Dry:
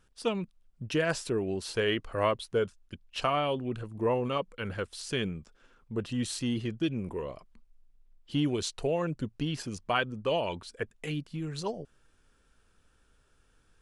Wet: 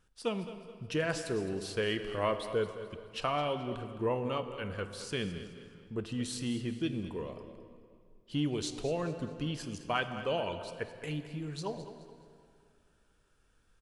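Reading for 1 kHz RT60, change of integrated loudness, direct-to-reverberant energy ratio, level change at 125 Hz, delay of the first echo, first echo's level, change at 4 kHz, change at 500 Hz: 2.3 s, -3.5 dB, 8.0 dB, -3.0 dB, 0.213 s, -14.0 dB, -3.5 dB, -3.5 dB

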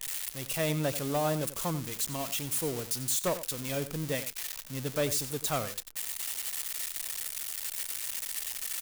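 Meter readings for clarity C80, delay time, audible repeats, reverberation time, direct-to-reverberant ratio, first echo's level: none, 91 ms, 1, none, none, -13.5 dB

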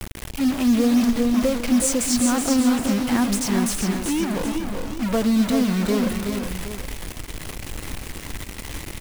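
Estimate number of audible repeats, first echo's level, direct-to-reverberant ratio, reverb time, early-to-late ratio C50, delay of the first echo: 3, -19.5 dB, none, none, none, 0.252 s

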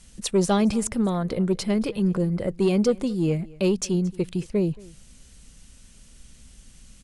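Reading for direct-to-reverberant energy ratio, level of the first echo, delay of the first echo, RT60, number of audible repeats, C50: none, -23.0 dB, 0.225 s, none, 1, none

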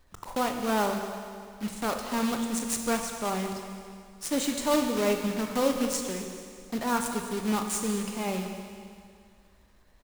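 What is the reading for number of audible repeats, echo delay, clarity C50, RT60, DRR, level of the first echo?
1, 0.218 s, 5.0 dB, 2.2 s, 4.0 dB, -16.0 dB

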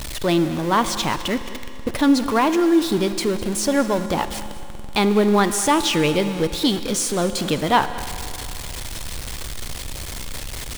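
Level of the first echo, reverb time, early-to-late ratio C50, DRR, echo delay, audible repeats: -17.5 dB, 2.8 s, 10.5 dB, 10.0 dB, 0.206 s, 1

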